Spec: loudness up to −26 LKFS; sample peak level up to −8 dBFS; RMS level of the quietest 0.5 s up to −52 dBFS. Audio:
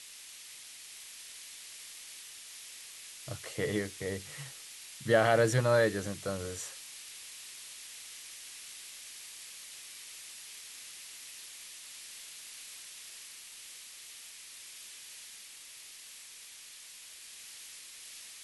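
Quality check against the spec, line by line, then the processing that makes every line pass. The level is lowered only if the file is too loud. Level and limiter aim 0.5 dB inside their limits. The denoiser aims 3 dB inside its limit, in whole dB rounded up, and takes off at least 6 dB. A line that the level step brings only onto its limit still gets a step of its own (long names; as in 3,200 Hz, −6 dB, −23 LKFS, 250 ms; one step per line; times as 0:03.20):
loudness −37.5 LKFS: in spec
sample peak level −12.5 dBFS: in spec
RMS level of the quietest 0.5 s −51 dBFS: out of spec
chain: broadband denoise 6 dB, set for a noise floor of −51 dBFS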